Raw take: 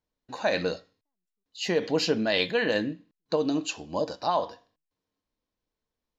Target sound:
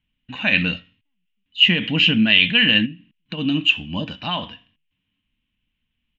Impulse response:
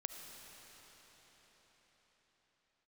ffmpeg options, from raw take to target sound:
-filter_complex "[0:a]firequalizer=gain_entry='entry(230,0);entry(410,-22);entry(2900,11);entry(4500,-23)':delay=0.05:min_phase=1,asplit=3[link_01][link_02][link_03];[link_01]afade=type=out:start_time=2.85:duration=0.02[link_04];[link_02]acompressor=threshold=-40dB:ratio=12,afade=type=in:start_time=2.85:duration=0.02,afade=type=out:start_time=3.37:duration=0.02[link_05];[link_03]afade=type=in:start_time=3.37:duration=0.02[link_06];[link_04][link_05][link_06]amix=inputs=3:normalize=0,alimiter=level_in=14dB:limit=-1dB:release=50:level=0:latency=1,volume=-1dB"

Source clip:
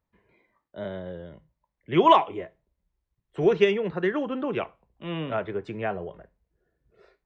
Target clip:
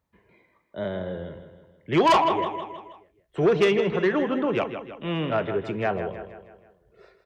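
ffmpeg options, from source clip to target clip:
ffmpeg -i in.wav -filter_complex "[0:a]asplit=2[link_01][link_02];[link_02]aecho=0:1:159|318|477|636|795:0.299|0.146|0.0717|0.0351|0.0172[link_03];[link_01][link_03]amix=inputs=2:normalize=0,asoftclip=type=tanh:threshold=-18.5dB,highpass=40,volume=4.5dB" out.wav

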